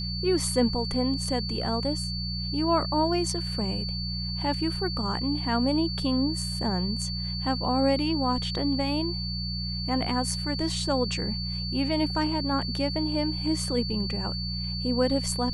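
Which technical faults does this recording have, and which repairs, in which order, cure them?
hum 60 Hz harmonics 3 -33 dBFS
whine 4.5 kHz -33 dBFS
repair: band-stop 4.5 kHz, Q 30; de-hum 60 Hz, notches 3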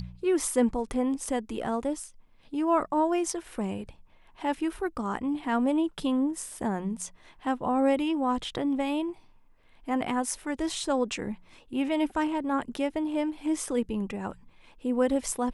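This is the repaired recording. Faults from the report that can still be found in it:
nothing left

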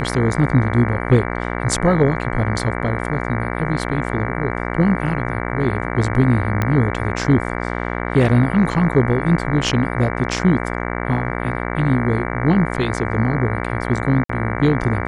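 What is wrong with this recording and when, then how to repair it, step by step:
buzz 60 Hz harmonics 38 -24 dBFS
6.62 s: pop -7 dBFS
14.24–14.29 s: dropout 54 ms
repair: de-click; de-hum 60 Hz, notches 38; interpolate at 14.24 s, 54 ms

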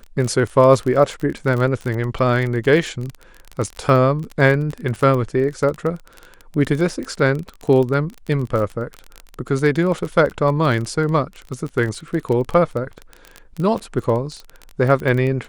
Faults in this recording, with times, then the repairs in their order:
crackle 23 per s -23 dBFS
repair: de-click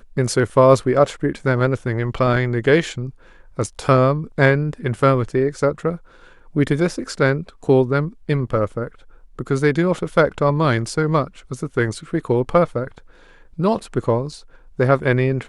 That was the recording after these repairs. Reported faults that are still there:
nothing left

